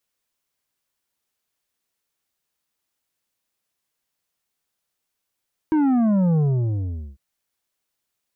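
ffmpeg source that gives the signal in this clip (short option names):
-f lavfi -i "aevalsrc='0.15*clip((1.45-t)/0.8,0,1)*tanh(2.51*sin(2*PI*320*1.45/log(65/320)*(exp(log(65/320)*t/1.45)-1)))/tanh(2.51)':d=1.45:s=44100"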